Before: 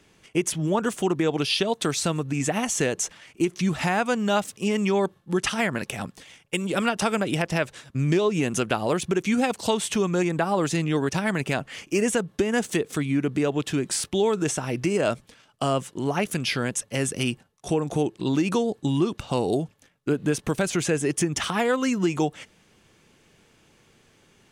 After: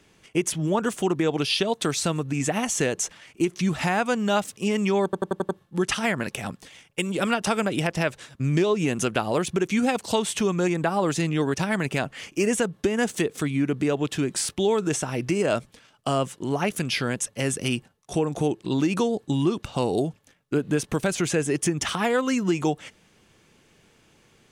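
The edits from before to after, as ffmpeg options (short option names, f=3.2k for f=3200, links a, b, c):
-filter_complex "[0:a]asplit=6[a][b][c][d][e][f];[a]atrim=end=5.132[g];[b]atrim=start=5.038:end=5.132[h];[c]atrim=start=5.038:end=5.132[i];[d]atrim=start=5.038:end=5.132[j];[e]atrim=start=5.038:end=5.132[k];[f]atrim=start=5.038[l];[g][h]acrossfade=d=0.004:c1=hsin:c2=hsin[m];[m][i]acrossfade=d=0.004:c1=hsin:c2=hsin[n];[n][j]acrossfade=d=0.004:c1=hsin:c2=hsin[o];[o][k]acrossfade=d=0.004:c1=hsin:c2=hsin[p];[p][l]acrossfade=d=0.004:c1=hsin:c2=hsin"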